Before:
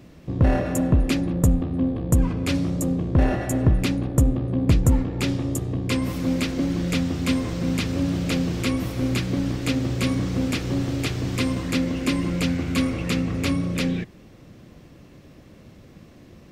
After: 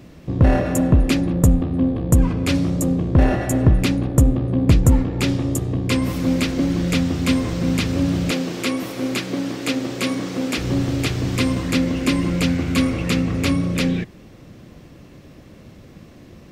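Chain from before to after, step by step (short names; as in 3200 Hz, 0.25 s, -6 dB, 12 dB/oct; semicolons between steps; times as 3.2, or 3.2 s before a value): 8.31–10.58 HPF 260 Hz 12 dB/oct; gain +4 dB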